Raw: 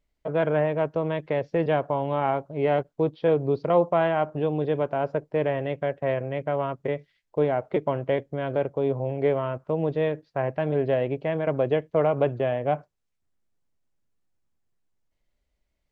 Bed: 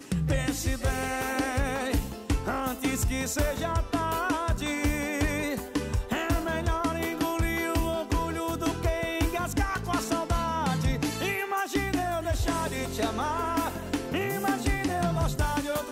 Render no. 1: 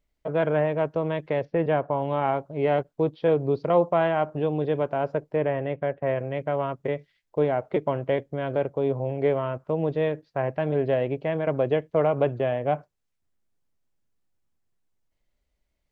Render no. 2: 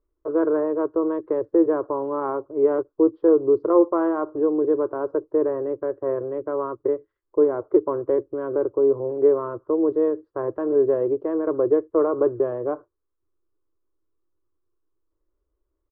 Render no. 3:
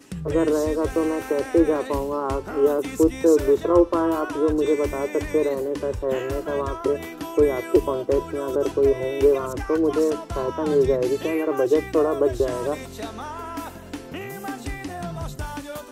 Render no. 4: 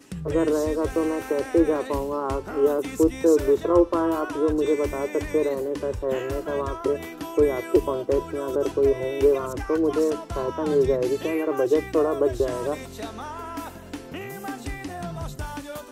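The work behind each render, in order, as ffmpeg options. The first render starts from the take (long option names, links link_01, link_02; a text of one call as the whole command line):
ffmpeg -i in.wav -filter_complex "[0:a]asettb=1/sr,asplit=3[link_01][link_02][link_03];[link_01]atrim=end=1.454[link_04];[link_02]atrim=start=1.45:end=2.02,asetpts=PTS-STARTPTS,afade=type=in:duration=0.004:curve=qsin,afade=type=out:start_time=0.566:duration=0.004:curve=qsin,lowpass=2700[link_05];[link_03]atrim=start=2.016[link_06];[link_04][link_05]acrossfade=duration=0.004:curve1=hsin:curve2=qsin[link_07];[link_07][link_06]acrossfade=duration=0.004:curve1=qsin:curve2=hsin,asettb=1/sr,asplit=3[link_08][link_09][link_10];[link_08]atrim=end=5.364[link_11];[link_09]atrim=start=5.36:end=6.16,asetpts=PTS-STARTPTS,afade=type=in:duration=0.004:curve=qsin,afade=type=out:start_time=0.796:duration=0.004:curve=qsin,lowpass=2600[link_12];[link_10]atrim=start=6.156[link_13];[link_11][link_12]acrossfade=duration=0.004:curve1=hsin:curve2=qsin[link_14];[link_14][link_13]acrossfade=duration=0.004:curve1=qsin:curve2=hsin" out.wav
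ffmpeg -i in.wav -af "firequalizer=gain_entry='entry(110,0);entry(160,-27);entry(330,13);entry(720,-10);entry(1100,6);entry(2300,-26)':delay=0.05:min_phase=1" out.wav
ffmpeg -i in.wav -i bed.wav -filter_complex "[1:a]volume=-4.5dB[link_01];[0:a][link_01]amix=inputs=2:normalize=0" out.wav
ffmpeg -i in.wav -af "volume=-1.5dB" out.wav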